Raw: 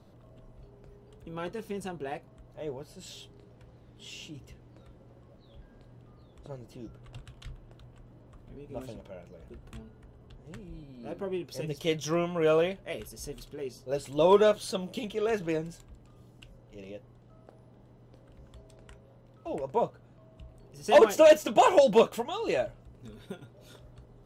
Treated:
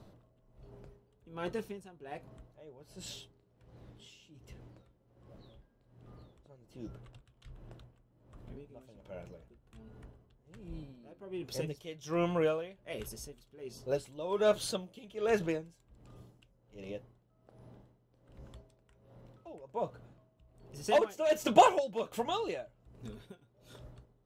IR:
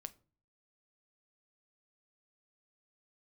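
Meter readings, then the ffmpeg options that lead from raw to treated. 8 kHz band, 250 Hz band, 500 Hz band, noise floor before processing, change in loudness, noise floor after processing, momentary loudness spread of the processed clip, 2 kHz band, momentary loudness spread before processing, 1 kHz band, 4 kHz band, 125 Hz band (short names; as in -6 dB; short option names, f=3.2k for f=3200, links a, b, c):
-4.0 dB, -5.5 dB, -8.0 dB, -56 dBFS, -6.5 dB, -70 dBFS, 22 LU, -6.0 dB, 25 LU, -3.0 dB, -5.0 dB, -4.5 dB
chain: -af "aeval=exprs='val(0)*pow(10,-18*(0.5-0.5*cos(2*PI*1.3*n/s))/20)':c=same,volume=1.5dB"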